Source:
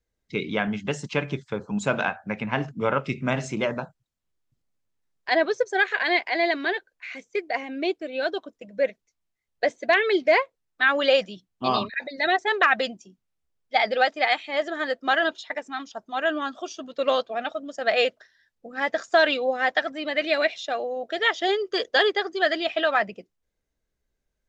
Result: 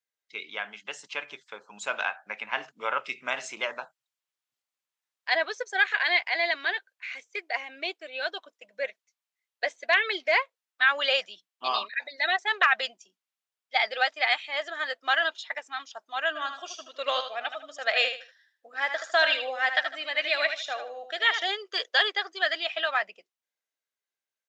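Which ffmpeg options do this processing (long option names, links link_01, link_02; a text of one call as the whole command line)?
ffmpeg -i in.wav -filter_complex "[0:a]asplit=3[link_01][link_02][link_03];[link_01]afade=type=out:start_time=16.35:duration=0.02[link_04];[link_02]aecho=1:1:77|154|231:0.376|0.094|0.0235,afade=type=in:start_time=16.35:duration=0.02,afade=type=out:start_time=21.43:duration=0.02[link_05];[link_03]afade=type=in:start_time=21.43:duration=0.02[link_06];[link_04][link_05][link_06]amix=inputs=3:normalize=0,highpass=880,equalizer=frequency=3000:width=1.7:gain=2.5,dynaudnorm=framelen=220:gausssize=17:maxgain=5dB,volume=-5.5dB" out.wav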